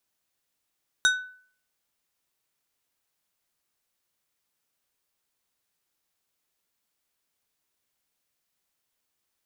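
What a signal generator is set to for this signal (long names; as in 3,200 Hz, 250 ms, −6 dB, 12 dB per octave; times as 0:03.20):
struck glass plate, lowest mode 1,500 Hz, decay 0.51 s, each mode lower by 3.5 dB, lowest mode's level −16 dB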